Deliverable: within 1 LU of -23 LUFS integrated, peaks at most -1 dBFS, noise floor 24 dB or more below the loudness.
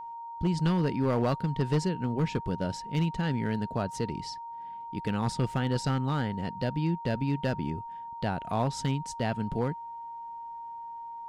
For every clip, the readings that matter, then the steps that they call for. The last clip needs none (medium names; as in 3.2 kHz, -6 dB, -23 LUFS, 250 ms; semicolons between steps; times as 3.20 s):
clipped samples 1.0%; clipping level -20.0 dBFS; steady tone 930 Hz; tone level -38 dBFS; loudness -30.5 LUFS; peak level -20.0 dBFS; loudness target -23.0 LUFS
-> clip repair -20 dBFS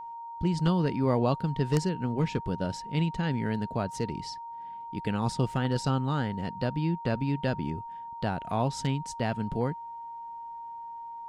clipped samples 0.0%; steady tone 930 Hz; tone level -38 dBFS
-> band-stop 930 Hz, Q 30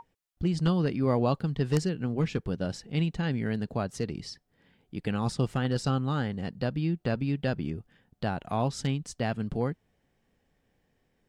steady tone not found; loudness -30.0 LUFS; peak level -11.5 dBFS; loudness target -23.0 LUFS
-> trim +7 dB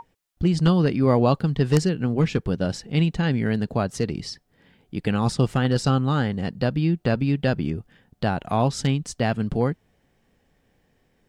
loudness -23.0 LUFS; peak level -4.5 dBFS; noise floor -67 dBFS